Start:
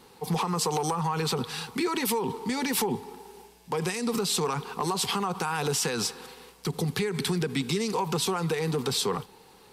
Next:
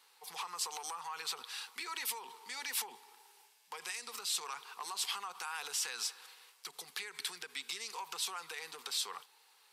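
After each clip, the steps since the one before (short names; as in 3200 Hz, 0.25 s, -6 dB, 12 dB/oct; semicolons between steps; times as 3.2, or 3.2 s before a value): HPF 1300 Hz 12 dB/oct; gain -7 dB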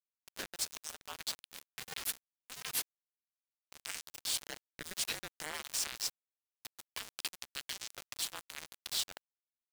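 sample gate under -35.5 dBFS; ring modulator with a swept carrier 460 Hz, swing 60%, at 0.41 Hz; gain +4.5 dB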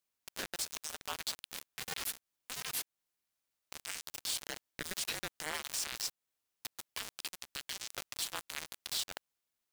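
compressor 2.5:1, threshold -41 dBFS, peak gain reduction 8.5 dB; limiter -32 dBFS, peak gain reduction 10 dB; gain +9 dB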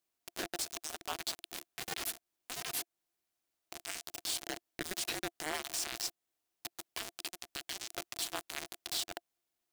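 small resonant body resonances 340/690 Hz, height 10 dB, ringing for 40 ms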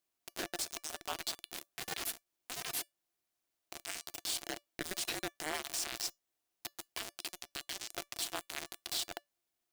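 resonator 580 Hz, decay 0.18 s, harmonics all, mix 40%; gain +3.5 dB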